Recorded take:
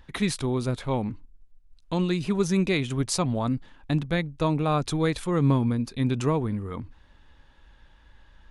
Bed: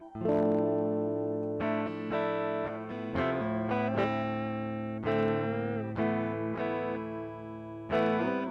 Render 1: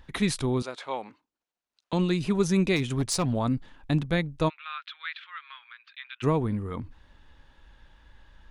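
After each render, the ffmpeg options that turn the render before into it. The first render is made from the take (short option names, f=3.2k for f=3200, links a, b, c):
-filter_complex "[0:a]asettb=1/sr,asplit=3[a][b][c];[a]atrim=end=0.624[d];[b]atrim=start=0.62:end=1.93,asetpts=PTS-STARTPTS,afade=t=in:d=0.004:c=qsin,afade=t=out:st=1.306:d=0.004:c=qsin,highpass=610,lowpass=6.9k[e];[c]atrim=start=1.926[f];[d][e]acrossfade=d=0.004:c1=hsin:c2=qsin[g];[g][f]acrossfade=d=0.004:c1=qsin:c2=hsin,asettb=1/sr,asplit=3[h][i][j];[h]atrim=end=2.764[k];[i]atrim=start=2.76:end=3.33,asetpts=PTS-STARTPTS,afade=t=in:d=0.004:c=qsin,afade=t=out:st=0.566:d=0.004:c=qsin,volume=21dB,asoftclip=hard,volume=-21dB[l];[j]atrim=start=3.326[m];[k][l]acrossfade=d=0.004:c1=hsin:c2=qsin[n];[n][m]acrossfade=d=0.004:c1=qsin:c2=hsin,asplit=3[o][p][q];[o]afade=t=out:st=4.48:d=0.02[r];[p]asuperpass=centerf=2200:order=8:qfactor=0.96,afade=t=in:st=4.48:d=0.02,afade=t=out:st=6.22:d=0.02[s];[q]afade=t=in:st=6.22:d=0.02[t];[r][s][t]amix=inputs=3:normalize=0"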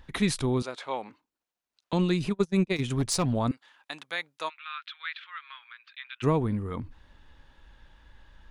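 -filter_complex "[0:a]asplit=3[a][b][c];[a]afade=t=out:st=2.29:d=0.02[d];[b]agate=range=-33dB:threshold=-23dB:ratio=16:release=100:detection=peak,afade=t=in:st=2.29:d=0.02,afade=t=out:st=2.78:d=0.02[e];[c]afade=t=in:st=2.78:d=0.02[f];[d][e][f]amix=inputs=3:normalize=0,asettb=1/sr,asplit=3[g][h][i];[g]atrim=end=3.514[j];[h]atrim=start=3.51:end=5,asetpts=PTS-STARTPTS,afade=t=in:d=0.004:c=qsin,afade=t=out:st=1.486:d=0.004:c=qsin,highpass=1k[k];[i]atrim=start=4.996[l];[j][k]acrossfade=d=0.004:c1=hsin:c2=qsin[m];[m][l]acrossfade=d=0.004:c1=qsin:c2=hsin"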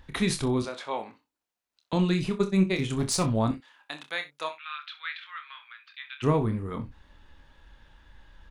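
-filter_complex "[0:a]asplit=2[a][b];[b]adelay=27,volume=-8dB[c];[a][c]amix=inputs=2:normalize=0,aecho=1:1:41|63:0.133|0.168"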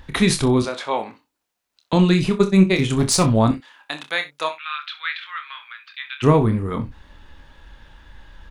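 -af "volume=9dB"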